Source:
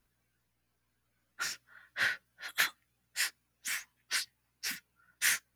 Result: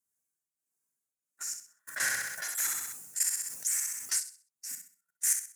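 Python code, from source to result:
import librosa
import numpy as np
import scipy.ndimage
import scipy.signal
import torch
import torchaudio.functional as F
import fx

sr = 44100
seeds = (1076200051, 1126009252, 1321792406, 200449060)

y = scipy.signal.sosfilt(scipy.signal.butter(2, 94.0, 'highpass', fs=sr, output='sos'), x)
y = fx.high_shelf_res(y, sr, hz=5200.0, db=14.0, q=3.0)
y = fx.hum_notches(y, sr, base_hz=60, count=3)
y = fx.level_steps(y, sr, step_db=16)
y = fx.tremolo_shape(y, sr, shape='triangle', hz=1.5, depth_pct=80)
y = fx.echo_feedback(y, sr, ms=64, feedback_pct=32, wet_db=-8.0)
y = fx.env_flatten(y, sr, amount_pct=70, at=(1.87, 4.18), fade=0.02)
y = y * 10.0 ** (-3.5 / 20.0)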